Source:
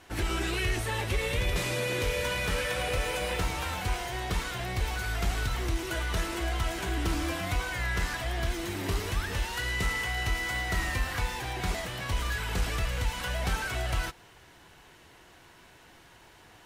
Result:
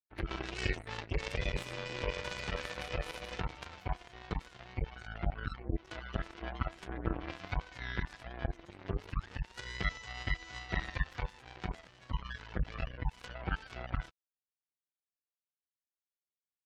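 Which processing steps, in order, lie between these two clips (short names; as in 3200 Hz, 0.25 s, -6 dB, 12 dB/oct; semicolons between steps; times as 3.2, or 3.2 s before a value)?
spectral gate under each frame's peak -20 dB strong; power-law curve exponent 3; gain +3.5 dB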